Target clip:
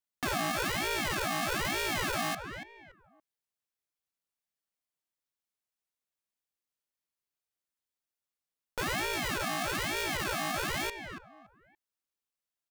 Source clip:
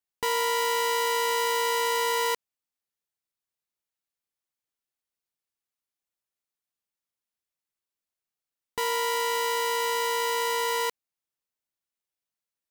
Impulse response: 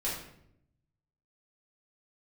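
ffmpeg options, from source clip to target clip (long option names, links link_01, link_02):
-filter_complex "[0:a]asplit=2[link_01][link_02];[link_02]adelay=284,lowpass=frequency=1400:poles=1,volume=-9dB,asplit=2[link_03][link_04];[link_04]adelay=284,lowpass=frequency=1400:poles=1,volume=0.3,asplit=2[link_05][link_06];[link_06]adelay=284,lowpass=frequency=1400:poles=1,volume=0.3[link_07];[link_01][link_03][link_05][link_07]amix=inputs=4:normalize=0,aeval=exprs='clip(val(0),-1,0.0237)':channel_layout=same,aeval=exprs='val(0)*sin(2*PI*780*n/s+780*0.8/1.1*sin(2*PI*1.1*n/s))':channel_layout=same"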